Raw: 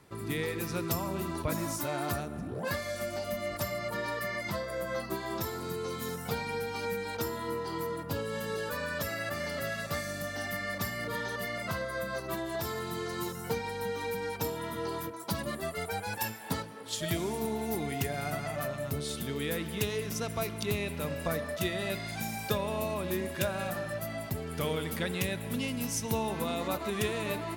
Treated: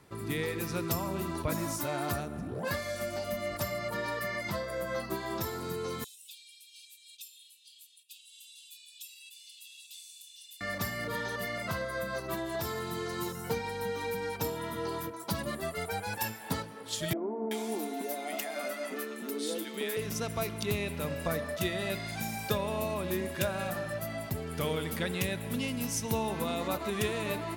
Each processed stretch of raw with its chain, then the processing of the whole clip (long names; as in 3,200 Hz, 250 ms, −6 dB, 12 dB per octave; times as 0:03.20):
0:06.04–0:10.61: Chebyshev high-pass with heavy ripple 2,500 Hz, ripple 9 dB + high-shelf EQ 9,900 Hz −4 dB
0:17.13–0:19.97: linear-phase brick-wall high-pass 200 Hz + multiband delay without the direct sound lows, highs 380 ms, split 1,100 Hz
whole clip: no processing